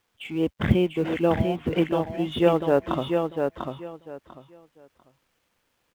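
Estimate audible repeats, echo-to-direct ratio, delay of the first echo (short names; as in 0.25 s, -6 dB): 3, -5.0 dB, 0.695 s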